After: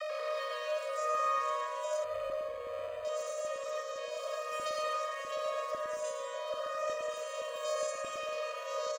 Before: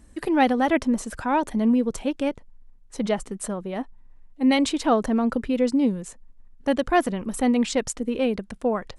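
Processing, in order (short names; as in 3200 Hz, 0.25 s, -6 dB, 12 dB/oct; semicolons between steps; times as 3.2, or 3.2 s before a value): spectral swells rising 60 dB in 1.47 s; tilt +2.5 dB/oct; in parallel at +2 dB: negative-ratio compressor -27 dBFS, ratio -0.5; on the sum: flange 0.37 Hz, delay 4.9 ms, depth 1.1 ms, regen +61%; vocoder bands 16, square 312 Hz; overloaded stage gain 25.5 dB; frequency shift +300 Hz; LFO notch saw up 0.87 Hz 330–4500 Hz; on a send: bouncing-ball echo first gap 0.11 s, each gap 0.7×, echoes 5; on the sum: Schroeder reverb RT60 0.35 s, combs from 26 ms, DRR 12 dB; echoes that change speed 88 ms, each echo -2 st, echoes 2, each echo -6 dB; 2.04–3.05 decimation joined by straight lines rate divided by 8×; gain -8 dB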